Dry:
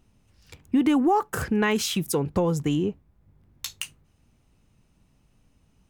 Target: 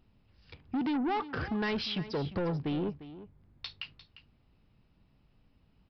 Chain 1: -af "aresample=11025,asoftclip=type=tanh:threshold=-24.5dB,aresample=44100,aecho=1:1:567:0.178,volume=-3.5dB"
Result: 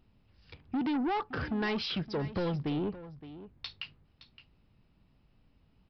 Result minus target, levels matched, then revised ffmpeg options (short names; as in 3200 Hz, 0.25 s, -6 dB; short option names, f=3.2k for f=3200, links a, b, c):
echo 0.217 s late
-af "aresample=11025,asoftclip=type=tanh:threshold=-24.5dB,aresample=44100,aecho=1:1:350:0.178,volume=-3.5dB"